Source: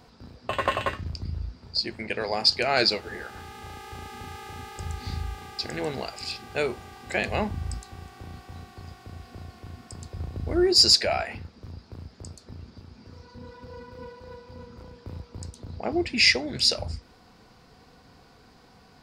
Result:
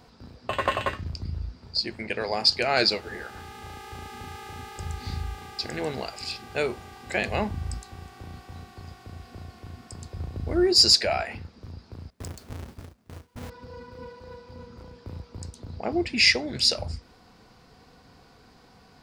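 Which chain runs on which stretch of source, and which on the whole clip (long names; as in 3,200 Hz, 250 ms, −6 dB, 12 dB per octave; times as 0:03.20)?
0:12.10–0:13.50: each half-wave held at its own peak + noise gate with hold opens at −35 dBFS, closes at −37 dBFS
whole clip: no processing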